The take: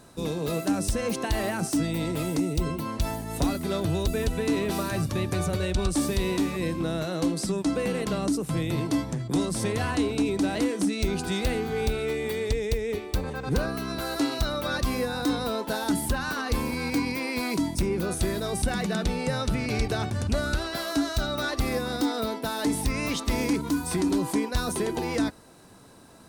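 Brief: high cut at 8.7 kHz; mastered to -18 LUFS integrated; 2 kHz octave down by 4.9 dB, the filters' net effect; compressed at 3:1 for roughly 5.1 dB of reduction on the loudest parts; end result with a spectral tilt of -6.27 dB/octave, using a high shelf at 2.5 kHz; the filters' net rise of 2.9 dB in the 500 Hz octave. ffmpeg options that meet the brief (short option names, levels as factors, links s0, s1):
-af "lowpass=8700,equalizer=f=500:t=o:g=4,equalizer=f=2000:t=o:g=-3.5,highshelf=f=2500:g=-7.5,acompressor=threshold=0.0447:ratio=3,volume=4.47"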